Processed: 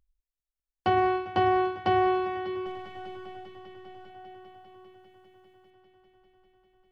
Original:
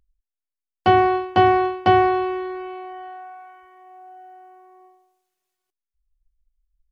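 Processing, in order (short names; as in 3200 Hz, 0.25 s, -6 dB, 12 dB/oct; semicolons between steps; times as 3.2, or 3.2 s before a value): 2.66–4.1 half-wave gain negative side -12 dB; multi-head echo 0.199 s, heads all three, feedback 74%, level -22.5 dB; limiter -10.5 dBFS, peak gain reduction 6 dB; gain -5.5 dB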